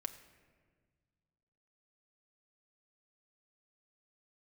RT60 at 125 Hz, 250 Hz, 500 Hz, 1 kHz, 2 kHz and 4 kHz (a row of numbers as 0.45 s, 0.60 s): 2.6 s, 2.2 s, 1.8 s, 1.4 s, 1.4 s, 0.95 s